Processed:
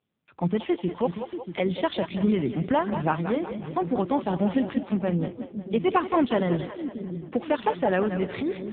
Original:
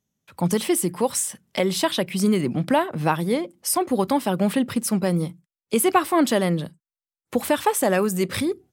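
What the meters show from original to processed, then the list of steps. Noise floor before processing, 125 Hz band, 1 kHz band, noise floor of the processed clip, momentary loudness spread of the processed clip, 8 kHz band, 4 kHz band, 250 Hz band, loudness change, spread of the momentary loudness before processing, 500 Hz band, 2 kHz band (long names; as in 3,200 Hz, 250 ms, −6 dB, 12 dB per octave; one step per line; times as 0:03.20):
below −85 dBFS, −3.0 dB, −3.5 dB, −47 dBFS, 8 LU, below −40 dB, −10.0 dB, −3.0 dB, −4.0 dB, 7 LU, −3.0 dB, −5.0 dB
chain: echo with a time of its own for lows and highs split 380 Hz, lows 634 ms, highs 182 ms, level −8 dB
level −3 dB
AMR narrowband 5.9 kbit/s 8,000 Hz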